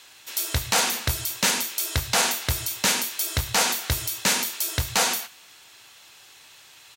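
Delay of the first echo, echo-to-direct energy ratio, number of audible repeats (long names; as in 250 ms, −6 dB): 71 ms, −22.0 dB, 2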